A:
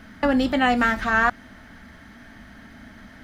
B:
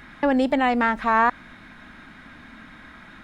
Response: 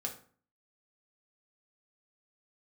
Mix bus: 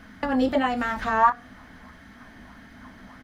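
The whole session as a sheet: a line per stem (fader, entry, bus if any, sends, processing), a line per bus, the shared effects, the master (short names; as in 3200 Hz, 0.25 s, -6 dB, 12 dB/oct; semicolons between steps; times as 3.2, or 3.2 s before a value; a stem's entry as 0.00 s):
-5.5 dB, 0.00 s, send -5.5 dB, compressor, threshold -21 dBFS, peak gain reduction 7 dB
-0.5 dB, 25 ms, no send, LFO band-pass sine 1.6 Hz 360–5400 Hz; resonant high shelf 1600 Hz -14 dB, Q 3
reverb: on, RT60 0.45 s, pre-delay 3 ms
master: dry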